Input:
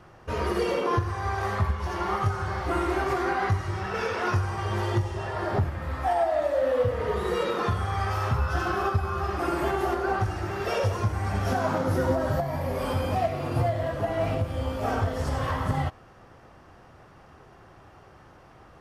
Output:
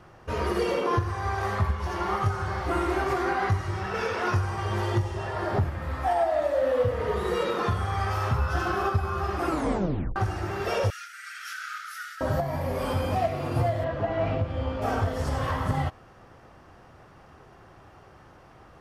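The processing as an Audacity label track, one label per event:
9.480000	9.480000	tape stop 0.68 s
10.900000	12.210000	brick-wall FIR high-pass 1200 Hz
13.840000	14.820000	LPF 3700 Hz

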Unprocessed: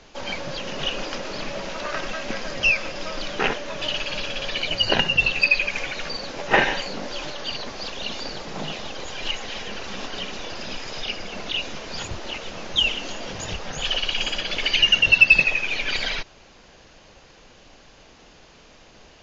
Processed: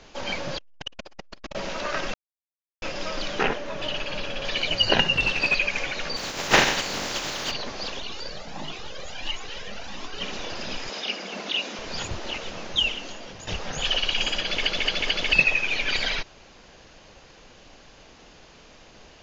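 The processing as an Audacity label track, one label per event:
0.570000	1.550000	core saturation saturates under 500 Hz
2.140000	2.820000	mute
3.430000	4.450000	high shelf 2500 Hz -7.5 dB
5.130000	5.550000	CVSD 32 kbps
6.160000	7.500000	spectral contrast lowered exponent 0.43
8.000000	10.210000	cascading flanger rising 1.5 Hz
10.890000	11.790000	brick-wall FIR high-pass 160 Hz
12.400000	13.470000	fade out, to -10.5 dB
14.450000	14.450000	stutter in place 0.22 s, 4 plays

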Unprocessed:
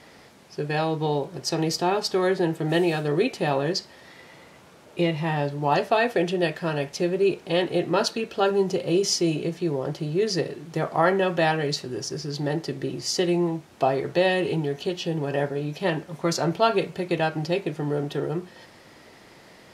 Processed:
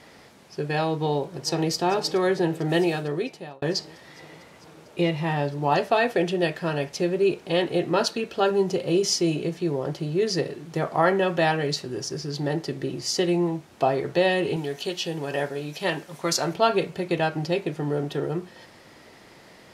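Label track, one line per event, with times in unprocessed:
0.940000	1.720000	echo throw 0.45 s, feedback 80%, level -16.5 dB
2.820000	3.620000	fade out
14.560000	16.540000	tilt +2 dB/oct

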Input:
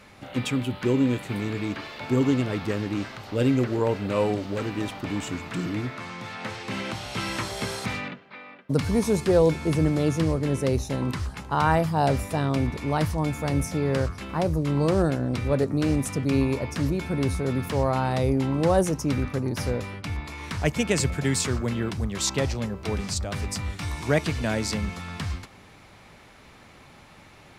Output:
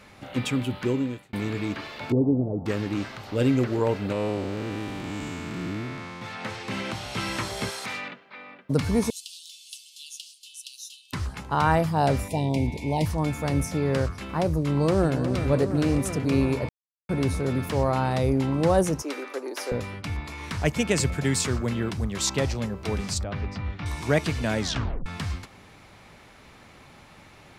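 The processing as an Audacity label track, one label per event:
0.770000	1.330000	fade out
2.120000	2.660000	steep low-pass 750 Hz
4.120000	6.220000	time blur width 0.275 s
7.690000	8.370000	HPF 880 Hz -> 330 Hz 6 dB/oct
9.100000	11.130000	steep high-pass 2800 Hz 96 dB/oct
12.280000	13.060000	elliptic band-stop 940–2100 Hz, stop band 60 dB
14.660000	15.220000	echo throw 0.36 s, feedback 80%, level -9 dB
16.690000	17.090000	mute
19.020000	19.720000	steep high-pass 330 Hz
23.230000	23.860000	air absorption 280 m
24.590000	24.590000	tape stop 0.47 s

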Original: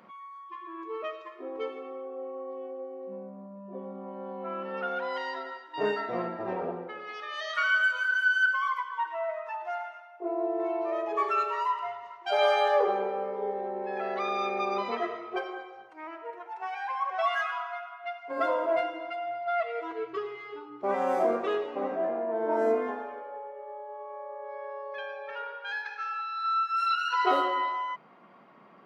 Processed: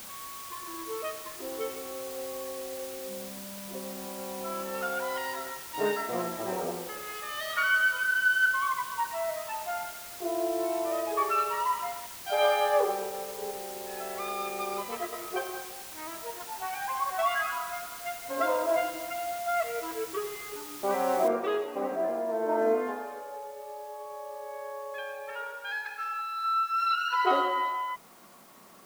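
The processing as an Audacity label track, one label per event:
12.060000	15.130000	upward expander, over -37 dBFS
21.280000	21.280000	noise floor step -44 dB -58 dB

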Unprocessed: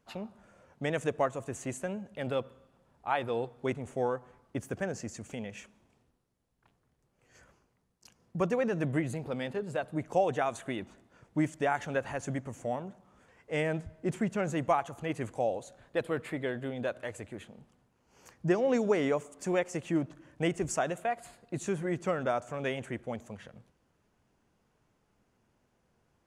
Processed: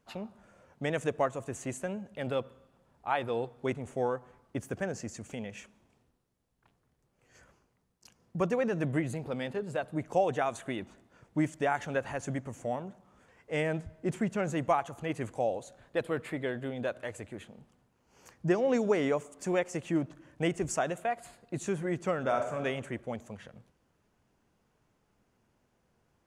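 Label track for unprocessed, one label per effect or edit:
22.190000	22.620000	reverb throw, RT60 0.86 s, DRR 3.5 dB

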